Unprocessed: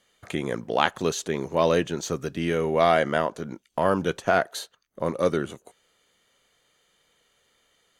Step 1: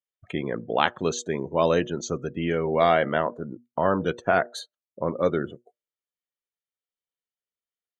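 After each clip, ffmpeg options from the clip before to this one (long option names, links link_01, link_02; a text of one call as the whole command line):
ffmpeg -i in.wav -af "bandreject=frequency=120.1:width_type=h:width=4,bandreject=frequency=240.2:width_type=h:width=4,bandreject=frequency=360.3:width_type=h:width=4,bandreject=frequency=480.4:width_type=h:width=4,bandreject=frequency=600.5:width_type=h:width=4,afftdn=noise_reduction=35:noise_floor=-37" out.wav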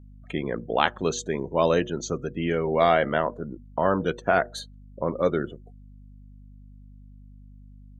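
ffmpeg -i in.wav -af "aeval=exprs='val(0)+0.00501*(sin(2*PI*50*n/s)+sin(2*PI*2*50*n/s)/2+sin(2*PI*3*50*n/s)/3+sin(2*PI*4*50*n/s)/4+sin(2*PI*5*50*n/s)/5)':channel_layout=same" out.wav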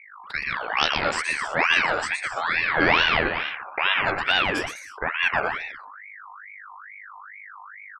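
ffmpeg -i in.wav -af "aecho=1:1:120|204|262.8|304|332.8:0.631|0.398|0.251|0.158|0.1,aeval=exprs='val(0)*sin(2*PI*1600*n/s+1600*0.4/2.3*sin(2*PI*2.3*n/s))':channel_layout=same,volume=2dB" out.wav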